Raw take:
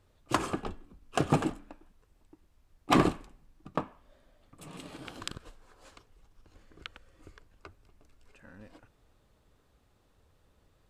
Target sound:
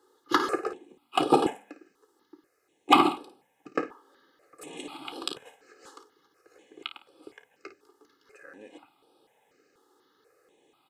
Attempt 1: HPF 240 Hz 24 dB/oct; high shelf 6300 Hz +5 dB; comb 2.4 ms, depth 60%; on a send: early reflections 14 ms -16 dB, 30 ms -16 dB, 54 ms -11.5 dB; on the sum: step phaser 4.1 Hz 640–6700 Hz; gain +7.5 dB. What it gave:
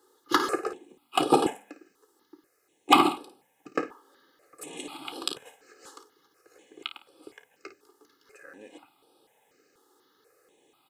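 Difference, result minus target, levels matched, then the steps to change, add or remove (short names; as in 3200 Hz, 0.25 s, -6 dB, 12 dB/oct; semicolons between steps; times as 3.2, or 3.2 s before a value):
8000 Hz band +5.0 dB
change: high shelf 6300 Hz -3.5 dB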